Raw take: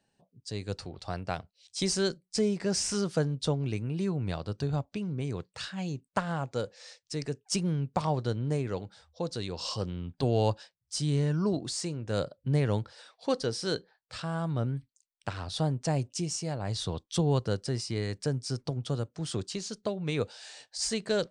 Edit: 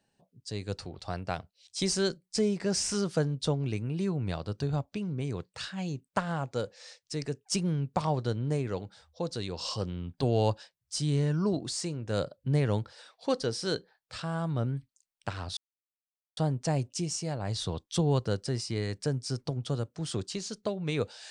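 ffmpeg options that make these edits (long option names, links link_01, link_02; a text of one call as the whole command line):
ffmpeg -i in.wav -filter_complex "[0:a]asplit=2[link_01][link_02];[link_01]atrim=end=15.57,asetpts=PTS-STARTPTS,afade=type=out:start_time=15.566:duration=0.004:curve=hsin,apad=pad_dur=0.8[link_03];[link_02]atrim=start=15.57,asetpts=PTS-STARTPTS,afade=type=in:duration=0.004:curve=hsin[link_04];[link_03][link_04]concat=n=2:v=0:a=1" out.wav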